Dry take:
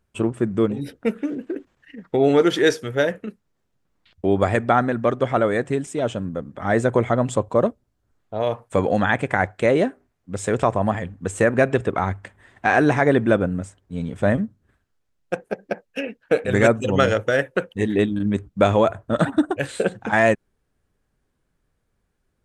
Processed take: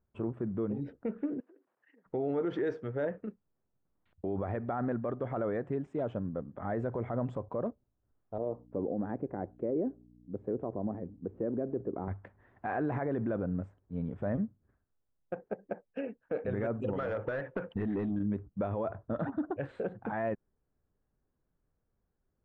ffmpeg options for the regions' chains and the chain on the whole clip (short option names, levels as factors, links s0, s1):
-filter_complex "[0:a]asettb=1/sr,asplit=3[s0][s1][s2];[s0]atrim=end=1.404[s3];[s1]atrim=start=1.4:end=2.06,asetpts=PTS-STARTPTS,afade=t=in:d=0.004:c=qsin,afade=t=out:st=0.656:d=0.004:c=qsin,acompressor=threshold=0.00631:ratio=8:attack=3.2:release=140:knee=1:detection=peak,highpass=460[s4];[s2]atrim=start=2.056[s5];[s3][s4]acrossfade=d=0.004:c1=hsin:c2=qsin[s6];[s6][s5]acrossfade=d=0.004:c1=qsin:c2=hsin,asettb=1/sr,asplit=3[s7][s8][s9];[s7]atrim=end=8.384[s10];[s8]atrim=start=8.38:end=12.08,asetpts=PTS-STARTPTS,afade=t=in:d=0.004:c=qsin,afade=t=out:st=3.696:d=0.004:c=qsin,aeval=exprs='val(0)+0.00631*(sin(2*PI*60*n/s)+sin(2*PI*2*60*n/s)/2+sin(2*PI*3*60*n/s)/3+sin(2*PI*4*60*n/s)/4+sin(2*PI*5*60*n/s)/5)':c=same,bandpass=f=340:t=q:w=1.6,lowshelf=f=340:g=6.5[s11];[s9]atrim=start=12.076[s12];[s10][s11]acrossfade=d=0.004:c1=hsin:c2=qsin[s13];[s13][s12]acrossfade=d=0.004:c1=qsin:c2=hsin,asettb=1/sr,asplit=3[s14][s15][s16];[s14]atrim=end=16.934[s17];[s15]atrim=start=16.93:end=18.16,asetpts=PTS-STARTPTS,afade=t=in:d=0.004:c=qsin,afade=t=out:st=1.226:d=0.004:c=qsin,asubboost=boost=12:cutoff=220,asplit=2[s18][s19];[s19]highpass=f=720:p=1,volume=12.6,asoftclip=type=tanh:threshold=0.794[s20];[s18][s20]amix=inputs=2:normalize=0,lowpass=f=5100:p=1,volume=0.501,acompressor=threshold=0.0891:ratio=16:attack=3.2:release=140:knee=1:detection=peak[s21];[s16]atrim=start=18.156[s22];[s17][s21]acrossfade=d=0.004:c1=hsin:c2=qsin[s23];[s23][s22]acrossfade=d=0.004:c1=qsin:c2=hsin,lowpass=1200,alimiter=limit=0.15:level=0:latency=1:release=41,volume=0.398"